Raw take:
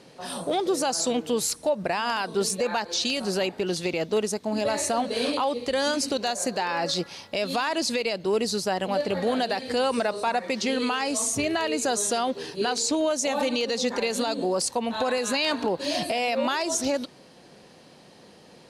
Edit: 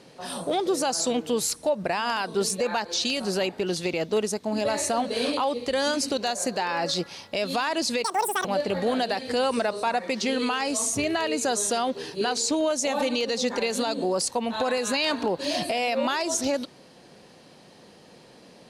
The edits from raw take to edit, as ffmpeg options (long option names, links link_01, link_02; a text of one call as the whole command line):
ffmpeg -i in.wav -filter_complex "[0:a]asplit=3[link_01][link_02][link_03];[link_01]atrim=end=8.044[link_04];[link_02]atrim=start=8.04:end=8.85,asetpts=PTS-STARTPTS,asetrate=87759,aresample=44100,atrim=end_sample=17950,asetpts=PTS-STARTPTS[link_05];[link_03]atrim=start=8.846[link_06];[link_04][link_05]acrossfade=duration=0.004:curve1=hsin:curve2=hsin[link_07];[link_07][link_06]acrossfade=duration=0.004:curve1=hsin:curve2=hsin" out.wav